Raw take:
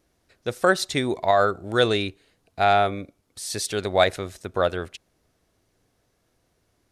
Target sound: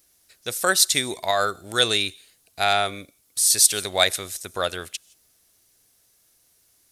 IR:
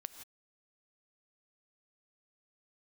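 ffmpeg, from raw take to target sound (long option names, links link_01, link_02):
-filter_complex "[0:a]crystalizer=i=9:c=0,asplit=2[link_01][link_02];[link_02]aderivative[link_03];[1:a]atrim=start_sample=2205[link_04];[link_03][link_04]afir=irnorm=-1:irlink=0,volume=-5.5dB[link_05];[link_01][link_05]amix=inputs=2:normalize=0,volume=-7dB"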